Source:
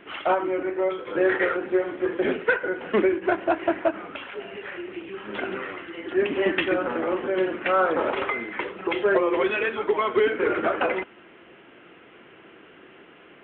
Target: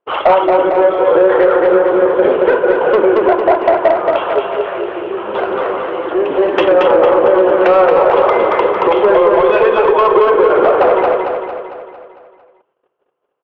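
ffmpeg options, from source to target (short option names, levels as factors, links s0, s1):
-filter_complex "[0:a]agate=range=0.00501:threshold=0.00708:ratio=16:detection=peak,equalizer=f=250:t=o:w=1:g=-10,equalizer=f=500:t=o:w=1:g=12,equalizer=f=1000:t=o:w=1:g=11,equalizer=f=2000:t=o:w=1:g=-10,acompressor=threshold=0.1:ratio=3,asoftclip=type=tanh:threshold=0.168,asettb=1/sr,asplit=3[s0][s1][s2];[s0]atrim=end=4.404[s3];[s1]atrim=start=4.4:end=6.54,asetpts=PTS-STARTPTS,afade=t=in:d=0.004:c=qsin,afade=t=out:st=2.136:d=0.004:c=qsin,flanger=delay=7.3:depth=10:regen=-85:speed=1.8:shape=triangular[s4];[s2]atrim=start=6.536[s5];[s3][s4]acrossfade=d=0.004:c1=hsin:c2=qsin[s6];[s6][s5]acrossfade=d=0.004:c1=qsin:c2=hsin,aecho=1:1:226|452|678|904|1130|1356|1582:0.631|0.334|0.177|0.0939|0.0498|0.0264|0.014,alimiter=level_in=5.31:limit=0.891:release=50:level=0:latency=1,volume=0.891"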